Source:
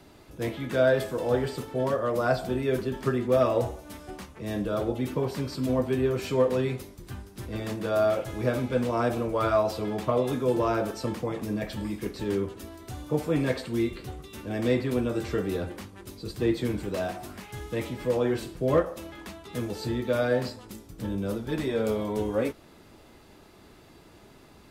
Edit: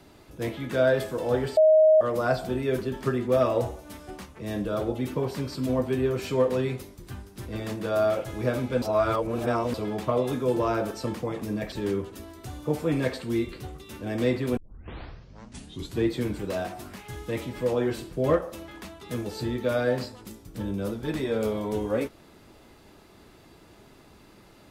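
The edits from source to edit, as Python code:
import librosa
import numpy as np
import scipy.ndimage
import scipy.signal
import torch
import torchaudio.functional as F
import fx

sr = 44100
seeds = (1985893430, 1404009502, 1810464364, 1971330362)

y = fx.edit(x, sr, fx.bleep(start_s=1.57, length_s=0.44, hz=627.0, db=-13.5),
    fx.reverse_span(start_s=8.82, length_s=0.92),
    fx.cut(start_s=11.72, length_s=0.44),
    fx.tape_start(start_s=15.01, length_s=1.48), tone=tone)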